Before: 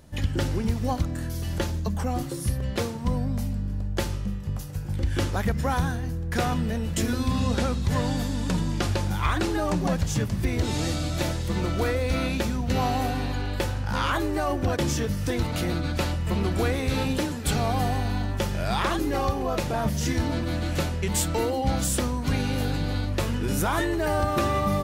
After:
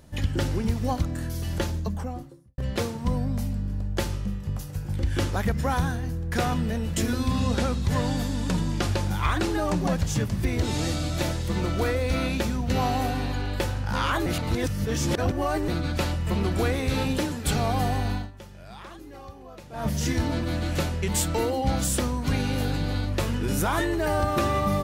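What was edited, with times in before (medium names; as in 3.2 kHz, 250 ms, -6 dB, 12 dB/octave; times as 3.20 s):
1.65–2.58 s: studio fade out
14.26–15.68 s: reverse
18.12–19.90 s: dip -17.5 dB, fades 0.19 s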